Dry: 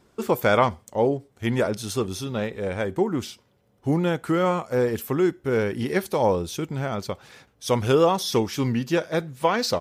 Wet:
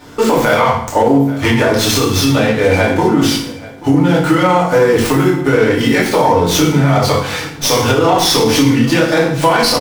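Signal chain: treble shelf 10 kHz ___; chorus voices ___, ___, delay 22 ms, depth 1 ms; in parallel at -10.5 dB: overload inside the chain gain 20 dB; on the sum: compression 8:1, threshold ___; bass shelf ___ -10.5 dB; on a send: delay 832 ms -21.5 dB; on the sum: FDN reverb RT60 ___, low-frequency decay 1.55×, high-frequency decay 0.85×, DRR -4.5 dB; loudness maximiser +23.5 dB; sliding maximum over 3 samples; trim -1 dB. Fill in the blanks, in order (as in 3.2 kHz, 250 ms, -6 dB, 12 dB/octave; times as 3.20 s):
-2.5 dB, 6, 0.57 Hz, -31 dBFS, 410 Hz, 0.63 s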